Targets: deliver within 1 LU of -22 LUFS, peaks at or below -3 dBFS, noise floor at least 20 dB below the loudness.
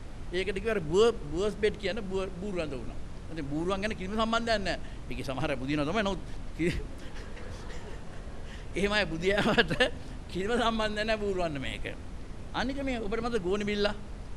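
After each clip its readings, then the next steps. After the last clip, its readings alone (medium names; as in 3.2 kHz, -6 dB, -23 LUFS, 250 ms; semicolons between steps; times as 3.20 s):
noise floor -42 dBFS; noise floor target -51 dBFS; loudness -30.5 LUFS; peak level -8.5 dBFS; loudness target -22.0 LUFS
-> noise print and reduce 9 dB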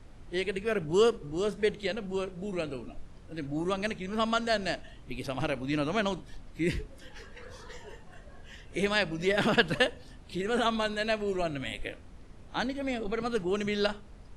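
noise floor -50 dBFS; noise floor target -51 dBFS
-> noise print and reduce 6 dB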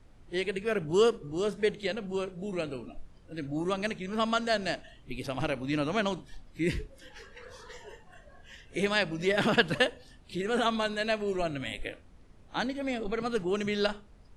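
noise floor -56 dBFS; loudness -30.5 LUFS; peak level -9.0 dBFS; loudness target -22.0 LUFS
-> trim +8.5 dB; peak limiter -3 dBFS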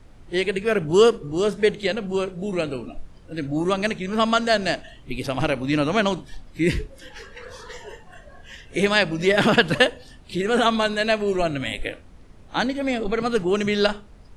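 loudness -22.5 LUFS; peak level -3.0 dBFS; noise floor -47 dBFS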